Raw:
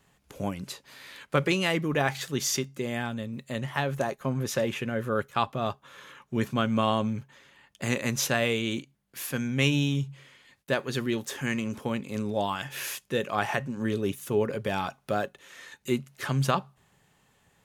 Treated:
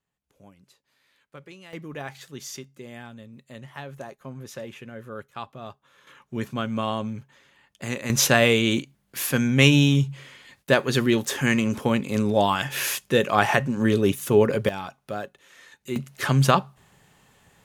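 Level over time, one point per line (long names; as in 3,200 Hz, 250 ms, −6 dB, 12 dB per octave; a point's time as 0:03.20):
−20 dB
from 0:01.73 −9.5 dB
from 0:06.07 −2 dB
from 0:08.10 +8 dB
from 0:14.69 −3.5 dB
from 0:15.96 +7 dB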